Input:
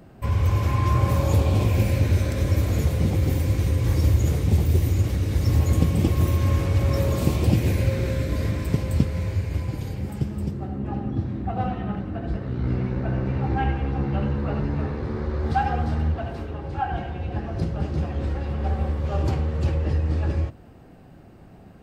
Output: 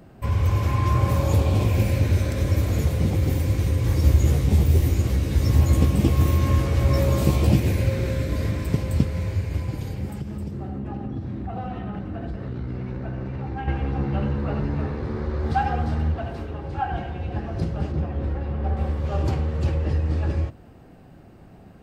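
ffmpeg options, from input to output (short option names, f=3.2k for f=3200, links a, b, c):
-filter_complex "[0:a]asettb=1/sr,asplit=3[a][b][c];[a]atrim=end=4.044[d];[b]atrim=start=4.04:end=7.6,asetpts=PTS-STARTPTS,afade=t=in:d=0.004:c=qsin,afade=t=out:st=3.556:d=0.004:c=qsin,asplit=2[e][f];[f]adelay=15,volume=-3.5dB[g];[e][g]amix=inputs=2:normalize=0,atrim=end_sample=156996[h];[c]atrim=start=7.596[i];[d][h]acrossfade=d=0.004:c1=hsin:c2=qsin[j];[j][i]acrossfade=d=0.004:c1=qsin:c2=hsin,asettb=1/sr,asplit=3[k][l][m];[k]atrim=end=10.104[n];[l]atrim=start=10.1:end=13.68,asetpts=PTS-STARTPTS,afade=t=in:d=0.004:c=qsin,afade=t=out:st=3.576:d=0.004:c=qsin,acompressor=threshold=-26dB:ratio=6:attack=3.2:release=140:knee=1:detection=peak[o];[m]atrim=start=13.676[p];[n][o]acrossfade=d=0.004:c1=hsin:c2=qsin[q];[q][p]acrossfade=d=0.004:c1=qsin:c2=hsin,asettb=1/sr,asplit=3[r][s][t];[r]atrim=end=17.924[u];[s]atrim=start=17.92:end=18.77,asetpts=PTS-STARTPTS,afade=t=in:d=0.004:c=qsin,afade=t=out:st=0.846:d=0.004:c=qsin,lowpass=f=1.8k:p=1[v];[t]atrim=start=18.766[w];[u][v]acrossfade=d=0.004:c1=hsin:c2=qsin[x];[x][w]acrossfade=d=0.004:c1=qsin:c2=hsin"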